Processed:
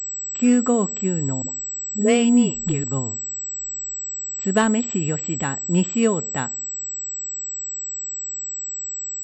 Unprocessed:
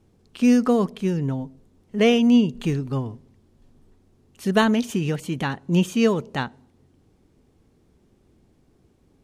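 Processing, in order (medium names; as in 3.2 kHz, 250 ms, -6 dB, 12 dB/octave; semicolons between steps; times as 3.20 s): 1.42–2.84 s: phase dispersion highs, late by 74 ms, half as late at 410 Hz; class-D stage that switches slowly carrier 7.8 kHz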